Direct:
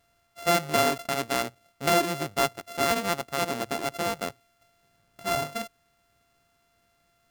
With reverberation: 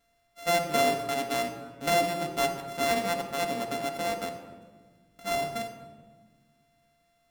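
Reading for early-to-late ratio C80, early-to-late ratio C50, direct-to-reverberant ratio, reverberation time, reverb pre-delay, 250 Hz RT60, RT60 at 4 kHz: 9.0 dB, 7.5 dB, 1.5 dB, 1.5 s, 4 ms, 2.2 s, 0.90 s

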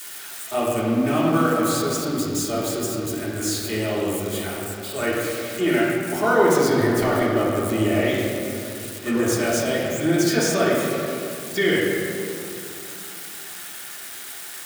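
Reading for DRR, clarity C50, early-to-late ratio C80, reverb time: -9.0 dB, -1.5 dB, 0.5 dB, 2.7 s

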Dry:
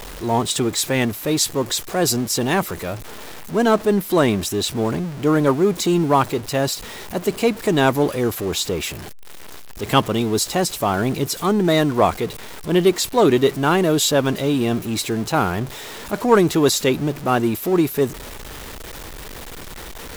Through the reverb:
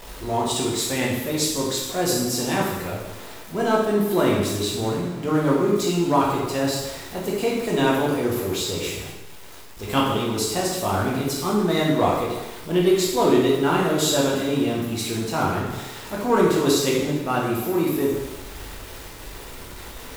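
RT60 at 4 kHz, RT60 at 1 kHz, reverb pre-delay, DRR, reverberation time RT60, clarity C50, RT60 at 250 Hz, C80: 1.0 s, 1.1 s, 5 ms, -4.5 dB, 1.1 s, 1.5 dB, 1.1 s, 4.0 dB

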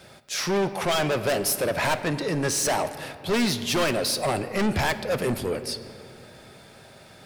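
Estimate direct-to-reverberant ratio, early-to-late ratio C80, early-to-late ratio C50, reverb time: 10.0 dB, 12.5 dB, 12.0 dB, 2.6 s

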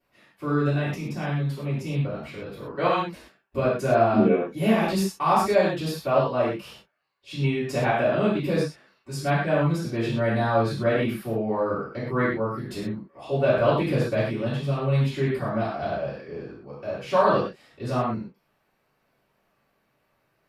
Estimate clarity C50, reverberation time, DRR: 1.0 dB, not exponential, -13.5 dB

